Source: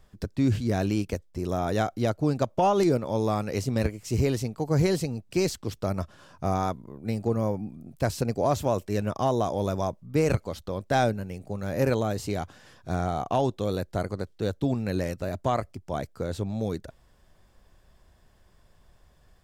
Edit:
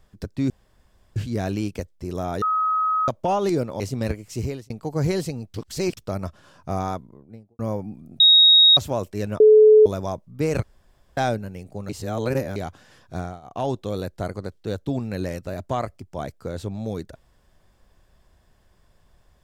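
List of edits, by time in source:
0:00.50: splice in room tone 0.66 s
0:01.76–0:02.42: beep over 1,270 Hz −18.5 dBFS
0:03.14–0:03.55: remove
0:04.09–0:04.45: fade out
0:05.29–0:05.72: reverse
0:06.58–0:07.34: fade out and dull
0:07.95–0:08.52: beep over 3,770 Hz −9.5 dBFS
0:09.15–0:09.61: beep over 430 Hz −8 dBFS
0:10.38–0:10.92: fill with room tone
0:11.64–0:12.31: reverse
0:12.90–0:13.43: duck −19.5 dB, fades 0.26 s

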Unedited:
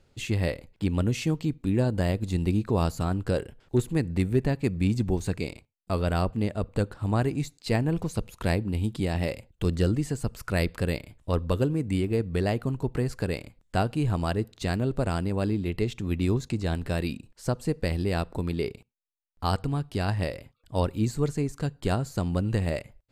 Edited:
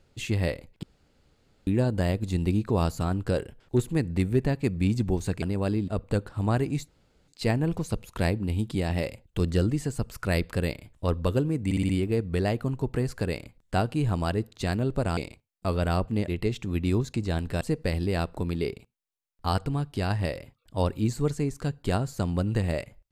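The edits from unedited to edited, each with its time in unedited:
0:00.83–0:01.67: fill with room tone
0:05.42–0:06.53: swap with 0:15.18–0:15.64
0:07.53: splice in room tone 0.40 s
0:11.90: stutter 0.06 s, 5 plays
0:16.97–0:17.59: remove

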